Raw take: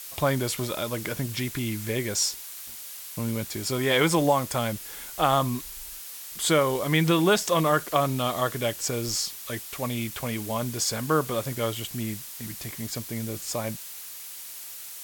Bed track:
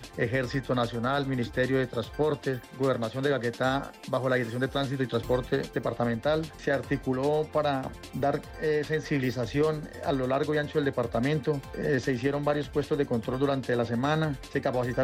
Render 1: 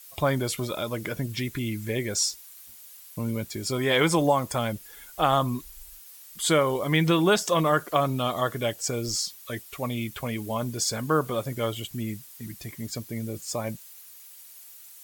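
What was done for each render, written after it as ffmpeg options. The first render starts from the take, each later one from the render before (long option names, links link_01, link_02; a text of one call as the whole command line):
ffmpeg -i in.wav -af "afftdn=noise_reduction=11:noise_floor=-40" out.wav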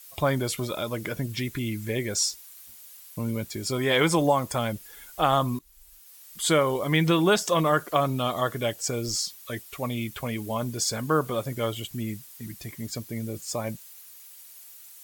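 ffmpeg -i in.wav -filter_complex "[0:a]asplit=2[link_01][link_02];[link_01]atrim=end=5.59,asetpts=PTS-STARTPTS,afade=type=out:start_time=5.586:duration=0.004:curve=hsin:silence=0.141254[link_03];[link_02]atrim=start=5.59,asetpts=PTS-STARTPTS,afade=type=in:duration=0.78:silence=0.141254[link_04];[link_03][link_04]concat=n=2:v=0:a=1" out.wav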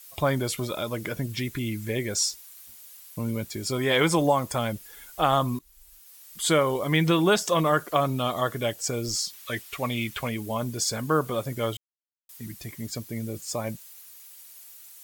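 ffmpeg -i in.wav -filter_complex "[0:a]asettb=1/sr,asplit=3[link_01][link_02][link_03];[link_01]atrim=end=9.334[link_04];[link_02]atrim=start=9.33:end=10.29,asetpts=PTS-STARTPTS,afade=type=in:duration=0.004:curve=qsin,afade=type=out:start_time=0.956:duration=0.004:curve=qsin,equalizer=frequency=2300:width_type=o:width=2.4:gain=6.5[link_05];[link_03]atrim=start=10.286[link_06];[link_04][link_05]acrossfade=duration=0.004:curve1=hsin:curve2=qsin[link_07];[link_07][link_06]acrossfade=duration=0.004:curve1=qsin:curve2=hsin,asplit=3[link_08][link_09][link_10];[link_08]atrim=end=11.77,asetpts=PTS-STARTPTS,afade=type=out:start_time=11.766:duration=0.004:curve=hsin[link_11];[link_09]atrim=start=11.77:end=12.29,asetpts=PTS-STARTPTS,volume=0[link_12];[link_10]atrim=start=12.29,asetpts=PTS-STARTPTS,afade=type=in:duration=0.004:curve=hsin[link_13];[link_11][link_12][link_13]concat=n=3:v=0:a=1" out.wav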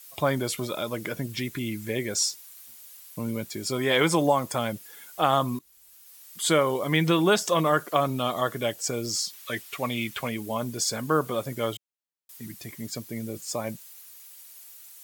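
ffmpeg -i in.wav -af "highpass=130" out.wav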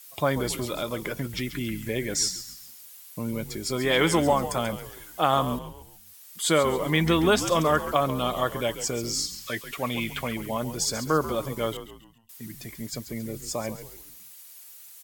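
ffmpeg -i in.wav -filter_complex "[0:a]asplit=5[link_01][link_02][link_03][link_04][link_05];[link_02]adelay=137,afreqshift=-85,volume=-11.5dB[link_06];[link_03]adelay=274,afreqshift=-170,volume=-19.5dB[link_07];[link_04]adelay=411,afreqshift=-255,volume=-27.4dB[link_08];[link_05]adelay=548,afreqshift=-340,volume=-35.4dB[link_09];[link_01][link_06][link_07][link_08][link_09]amix=inputs=5:normalize=0" out.wav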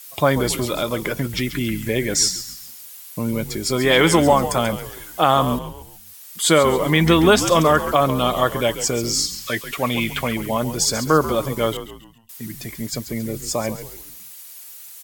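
ffmpeg -i in.wav -af "volume=7.5dB,alimiter=limit=-3dB:level=0:latency=1" out.wav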